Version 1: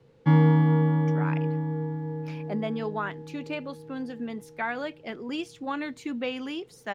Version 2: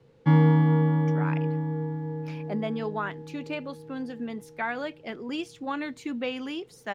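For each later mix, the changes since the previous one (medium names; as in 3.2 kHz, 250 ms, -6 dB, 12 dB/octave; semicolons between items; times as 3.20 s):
no change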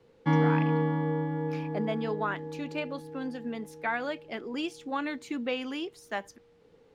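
speech: entry -0.75 s; master: add peaking EQ 130 Hz -11.5 dB 0.72 oct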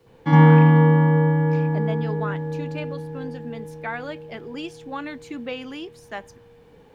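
background: remove distance through air 56 m; reverb: on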